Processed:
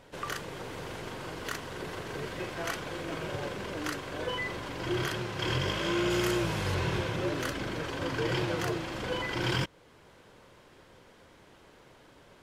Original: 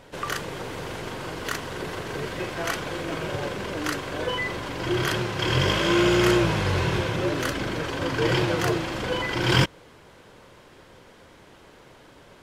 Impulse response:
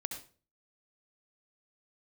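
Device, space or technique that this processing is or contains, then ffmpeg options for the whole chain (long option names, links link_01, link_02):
clipper into limiter: -filter_complex "[0:a]asoftclip=type=hard:threshold=-7.5dB,alimiter=limit=-13dB:level=0:latency=1:release=445,asettb=1/sr,asplit=3[link_01][link_02][link_03];[link_01]atrim=end=6.104[link_04];[link_02]atrim=start=6.1:end=6.75,asetpts=PTS-STARTPTS,afade=type=in:duration=0.004:curve=qsin,afade=type=out:start_time=0.646:duration=0.004:curve=qsin,highshelf=frequency=7000:gain=8.5[link_05];[link_03]atrim=start=6.746[link_06];[link_04][link_05]acrossfade=duration=0.004:curve1=hsin:curve2=qsin[link_07];[link_07][link_06]acrossfade=duration=0.004:curve1=qsin:curve2=hsin,volume=-6dB"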